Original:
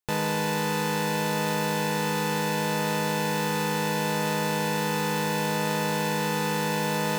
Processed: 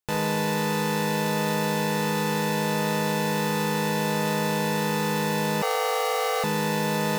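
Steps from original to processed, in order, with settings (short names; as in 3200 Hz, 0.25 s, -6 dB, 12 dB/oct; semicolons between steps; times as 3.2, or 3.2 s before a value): Schroeder reverb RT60 0.4 s, combs from 30 ms, DRR 8.5 dB; 5.62–6.44 frequency shift +290 Hz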